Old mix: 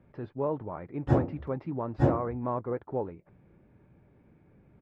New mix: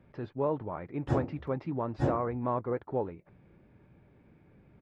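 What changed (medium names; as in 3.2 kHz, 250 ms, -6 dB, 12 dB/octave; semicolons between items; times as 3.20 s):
background -5.5 dB; master: add treble shelf 3.1 kHz +10 dB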